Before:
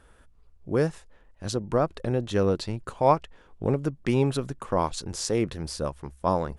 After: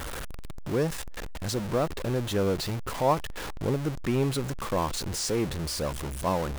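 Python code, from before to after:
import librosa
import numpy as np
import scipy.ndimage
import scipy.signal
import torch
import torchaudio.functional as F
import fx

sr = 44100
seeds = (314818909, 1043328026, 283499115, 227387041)

y = x + 0.5 * 10.0 ** (-24.5 / 20.0) * np.sign(x)
y = y * 10.0 ** (-5.0 / 20.0)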